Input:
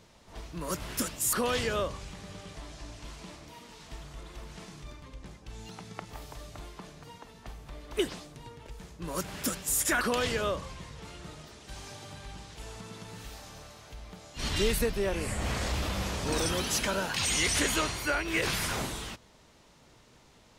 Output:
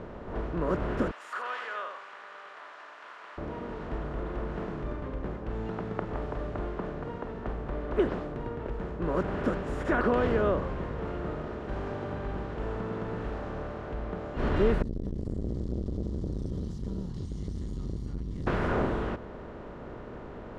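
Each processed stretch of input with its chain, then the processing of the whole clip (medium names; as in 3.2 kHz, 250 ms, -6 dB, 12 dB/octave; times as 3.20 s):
1.11–3.38 s: high-pass 1.2 kHz 24 dB/octave + delay 86 ms -9 dB
14.82–18.47 s: inverse Chebyshev band-stop 330–2700 Hz + compression 2.5:1, threshold -34 dBFS + transformer saturation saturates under 320 Hz
whole clip: spectral levelling over time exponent 0.6; low-pass 1.1 kHz 12 dB/octave; trim +2.5 dB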